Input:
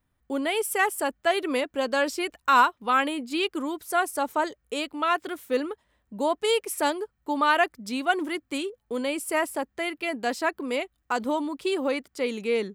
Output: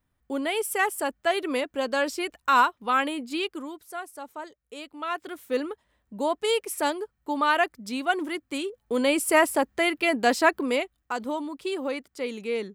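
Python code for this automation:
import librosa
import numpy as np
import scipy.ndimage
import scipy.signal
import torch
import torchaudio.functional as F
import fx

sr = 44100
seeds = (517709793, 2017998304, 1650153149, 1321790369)

y = fx.gain(x, sr, db=fx.line((3.31, -1.0), (4.03, -12.5), (4.58, -12.5), (5.57, -1.0), (8.56, -1.0), (9.1, 6.0), (10.55, 6.0), (11.13, -3.5)))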